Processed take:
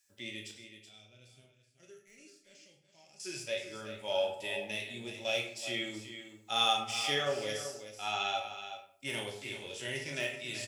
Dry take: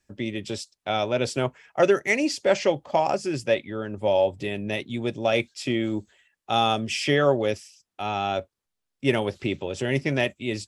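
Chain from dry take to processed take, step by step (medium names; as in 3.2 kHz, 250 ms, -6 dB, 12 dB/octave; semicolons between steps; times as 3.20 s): pre-emphasis filter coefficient 0.97; de-esser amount 90%; 0.51–3.20 s: amplifier tone stack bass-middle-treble 10-0-1; harmonic-percussive split percussive -13 dB; delay 377 ms -10.5 dB; reverberation RT60 0.60 s, pre-delay 18 ms, DRR 1.5 dB; trim +8.5 dB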